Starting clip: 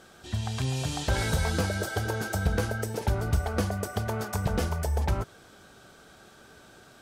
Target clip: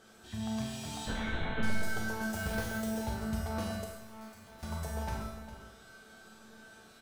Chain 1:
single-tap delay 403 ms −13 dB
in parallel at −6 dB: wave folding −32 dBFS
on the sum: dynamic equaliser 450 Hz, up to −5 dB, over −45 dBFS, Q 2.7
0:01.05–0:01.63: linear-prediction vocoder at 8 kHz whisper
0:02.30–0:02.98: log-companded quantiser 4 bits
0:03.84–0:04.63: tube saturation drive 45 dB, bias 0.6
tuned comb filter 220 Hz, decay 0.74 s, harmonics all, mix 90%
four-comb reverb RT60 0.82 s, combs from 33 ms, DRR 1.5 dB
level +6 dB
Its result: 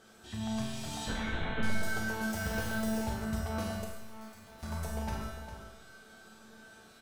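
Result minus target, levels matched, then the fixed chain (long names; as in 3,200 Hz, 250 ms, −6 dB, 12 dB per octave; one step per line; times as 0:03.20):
wave folding: distortion −21 dB
single-tap delay 403 ms −13 dB
in parallel at −6 dB: wave folding −44 dBFS
on the sum: dynamic equaliser 450 Hz, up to −5 dB, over −45 dBFS, Q 2.7
0:01.05–0:01.63: linear-prediction vocoder at 8 kHz whisper
0:02.30–0:02.98: log-companded quantiser 4 bits
0:03.84–0:04.63: tube saturation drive 45 dB, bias 0.6
tuned comb filter 220 Hz, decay 0.74 s, harmonics all, mix 90%
four-comb reverb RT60 0.82 s, combs from 33 ms, DRR 1.5 dB
level +6 dB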